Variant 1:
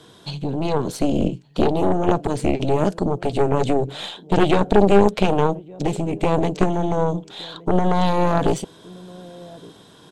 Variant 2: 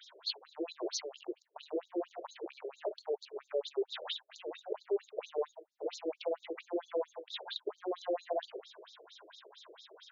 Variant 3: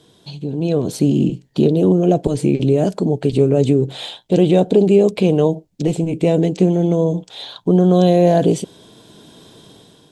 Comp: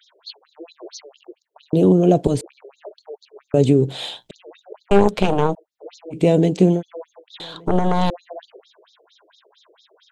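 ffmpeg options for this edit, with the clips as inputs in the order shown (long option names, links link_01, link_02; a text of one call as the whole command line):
ffmpeg -i take0.wav -i take1.wav -i take2.wav -filter_complex "[2:a]asplit=3[link_01][link_02][link_03];[0:a]asplit=2[link_04][link_05];[1:a]asplit=6[link_06][link_07][link_08][link_09][link_10][link_11];[link_06]atrim=end=1.732[link_12];[link_01]atrim=start=1.728:end=2.412[link_13];[link_07]atrim=start=2.408:end=3.542[link_14];[link_02]atrim=start=3.538:end=4.312[link_15];[link_08]atrim=start=4.308:end=4.912[link_16];[link_04]atrim=start=4.908:end=5.552[link_17];[link_09]atrim=start=5.548:end=6.2[link_18];[link_03]atrim=start=6.1:end=6.83[link_19];[link_10]atrim=start=6.73:end=7.402[link_20];[link_05]atrim=start=7.398:end=8.102[link_21];[link_11]atrim=start=8.098[link_22];[link_12][link_13]acrossfade=duration=0.004:curve1=hsin:curve2=hsin[link_23];[link_23][link_14]acrossfade=duration=0.004:curve1=hsin:curve2=hsin[link_24];[link_24][link_15]acrossfade=duration=0.004:curve1=hsin:curve2=hsin[link_25];[link_25][link_16]acrossfade=duration=0.004:curve1=hsin:curve2=hsin[link_26];[link_26][link_17]acrossfade=duration=0.004:curve1=hsin:curve2=hsin[link_27];[link_27][link_18]acrossfade=duration=0.004:curve1=hsin:curve2=hsin[link_28];[link_28][link_19]acrossfade=duration=0.1:curve1=tri:curve2=tri[link_29];[link_29][link_20]acrossfade=duration=0.1:curve1=tri:curve2=tri[link_30];[link_30][link_21]acrossfade=duration=0.004:curve1=hsin:curve2=hsin[link_31];[link_31][link_22]acrossfade=duration=0.004:curve1=hsin:curve2=hsin" out.wav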